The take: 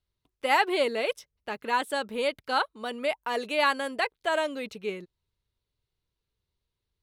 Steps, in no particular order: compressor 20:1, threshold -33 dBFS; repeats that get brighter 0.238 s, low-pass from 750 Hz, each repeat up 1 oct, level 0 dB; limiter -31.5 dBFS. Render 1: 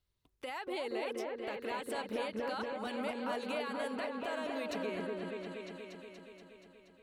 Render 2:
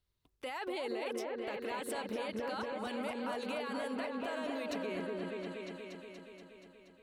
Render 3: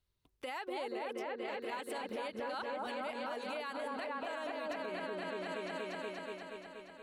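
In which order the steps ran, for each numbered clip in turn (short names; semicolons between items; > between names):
compressor > limiter > repeats that get brighter; limiter > repeats that get brighter > compressor; repeats that get brighter > compressor > limiter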